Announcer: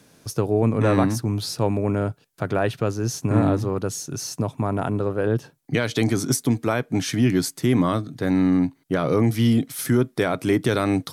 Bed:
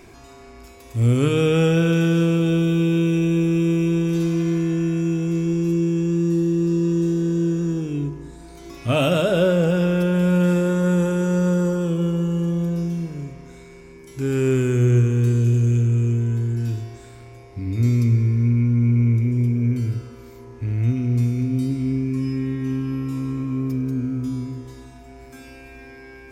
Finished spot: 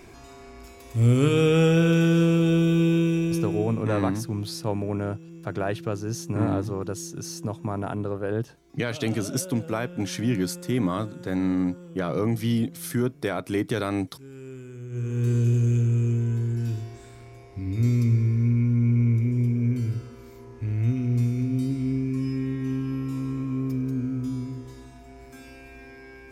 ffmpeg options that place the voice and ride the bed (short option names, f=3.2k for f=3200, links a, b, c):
-filter_complex "[0:a]adelay=3050,volume=-5.5dB[a];[1:a]volume=16.5dB,afade=t=out:st=2.88:d=0.98:silence=0.1,afade=t=in:st=14.9:d=0.45:silence=0.125893[b];[a][b]amix=inputs=2:normalize=0"